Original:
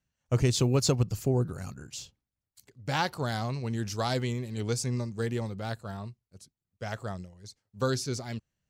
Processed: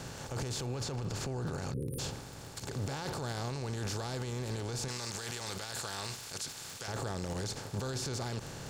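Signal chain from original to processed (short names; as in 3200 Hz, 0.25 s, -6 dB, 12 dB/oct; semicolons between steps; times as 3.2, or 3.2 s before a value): per-bin compression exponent 0.4; 0.66–1.8 high shelf 9500 Hz -11.5 dB; 1.74–1.99 spectral delete 540–8900 Hz; crackle 22/s -35 dBFS; 4.88–6.88 tilt shelf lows -9 dB, about 900 Hz; limiter -28 dBFS, peak gain reduction 21 dB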